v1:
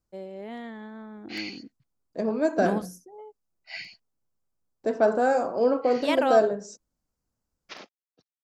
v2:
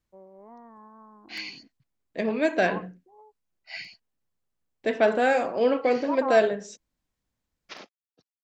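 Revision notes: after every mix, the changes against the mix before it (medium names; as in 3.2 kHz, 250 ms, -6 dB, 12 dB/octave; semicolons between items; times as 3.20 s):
first voice: add four-pole ladder low-pass 1.1 kHz, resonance 85%; second voice: add high-order bell 2.6 kHz +15.5 dB 1.3 oct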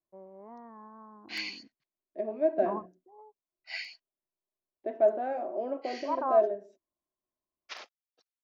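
second voice: add two resonant band-passes 480 Hz, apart 0.73 oct; background: add high-pass 660 Hz 12 dB/octave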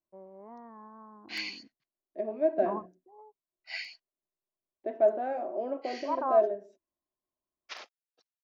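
no change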